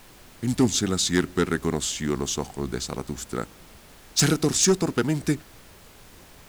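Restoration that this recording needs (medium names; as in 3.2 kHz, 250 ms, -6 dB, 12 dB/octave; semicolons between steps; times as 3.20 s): clip repair -12.5 dBFS; noise print and reduce 20 dB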